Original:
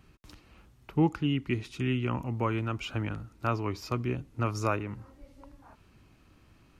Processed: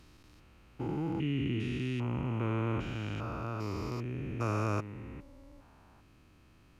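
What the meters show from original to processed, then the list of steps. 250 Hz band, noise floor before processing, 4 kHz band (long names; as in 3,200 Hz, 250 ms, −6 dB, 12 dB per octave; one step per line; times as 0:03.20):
−3.5 dB, −61 dBFS, −5.0 dB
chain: spectrum averaged block by block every 400 ms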